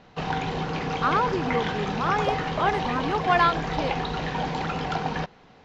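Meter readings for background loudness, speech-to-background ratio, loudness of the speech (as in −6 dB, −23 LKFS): −28.5 LKFS, 2.0 dB, −26.5 LKFS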